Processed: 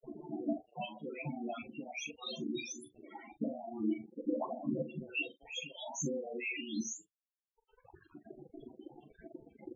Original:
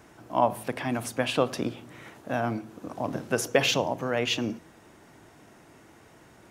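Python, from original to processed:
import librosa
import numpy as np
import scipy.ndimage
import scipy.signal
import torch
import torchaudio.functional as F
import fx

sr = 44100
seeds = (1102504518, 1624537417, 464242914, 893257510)

y = fx.spec_delay(x, sr, highs='late', ms=351)
y = fx.lowpass(y, sr, hz=2000.0, slope=6)
y = fx.dereverb_blind(y, sr, rt60_s=1.8)
y = scipy.signal.sosfilt(scipy.signal.butter(2, 240.0, 'highpass', fs=sr, output='sos'), y)
y = fx.dynamic_eq(y, sr, hz=350.0, q=0.76, threshold_db=-40.0, ratio=4.0, max_db=-3)
y = fx.over_compress(y, sr, threshold_db=-44.0, ratio=-1.0)
y = fx.quant_float(y, sr, bits=8)
y = fx.stretch_grains(y, sr, factor=1.5, grain_ms=81.0)
y = fx.quant_dither(y, sr, seeds[0], bits=8, dither='none')
y = fx.env_flanger(y, sr, rest_ms=2.6, full_db=-49.0)
y = fx.spec_topn(y, sr, count=8)
y = fx.doubler(y, sr, ms=41.0, db=-12.0)
y = y * 10.0 ** (8.0 / 20.0)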